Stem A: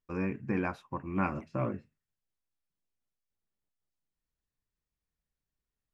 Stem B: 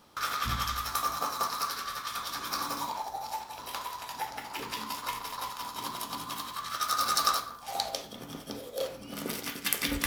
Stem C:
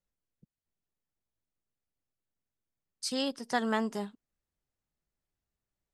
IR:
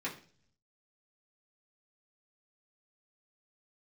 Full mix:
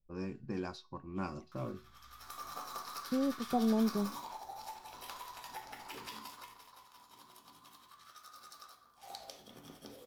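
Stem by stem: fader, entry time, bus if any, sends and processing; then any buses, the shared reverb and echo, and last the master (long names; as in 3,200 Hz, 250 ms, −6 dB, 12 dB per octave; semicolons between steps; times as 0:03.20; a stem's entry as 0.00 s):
−0.5 dB, 0.00 s, no send, low-pass that shuts in the quiet parts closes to 570 Hz, open at −27.5 dBFS; high shelf with overshoot 3,100 Hz +12 dB, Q 3
0:06.16 −1 dB → 0:06.72 −13 dB → 0:08.90 −13 dB → 0:09.16 −4 dB, 1.35 s, no send, downward compressor 2.5 to 1, threshold −34 dBFS, peak gain reduction 9 dB; automatic ducking −19 dB, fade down 1.80 s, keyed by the first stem
+1.0 dB, 0.00 s, no send, Butterworth low-pass 830 Hz; spectral tilt −4.5 dB per octave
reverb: not used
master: tuned comb filter 370 Hz, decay 0.3 s, harmonics all, mix 60%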